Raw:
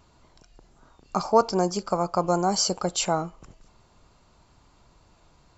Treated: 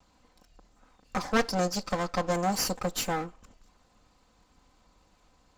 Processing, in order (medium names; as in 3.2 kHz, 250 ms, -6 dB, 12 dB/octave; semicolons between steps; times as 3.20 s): comb filter that takes the minimum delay 3.9 ms; 1.27–2.33 s: dynamic bell 4.7 kHz, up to +6 dB, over -47 dBFS, Q 1.2; trim -3.5 dB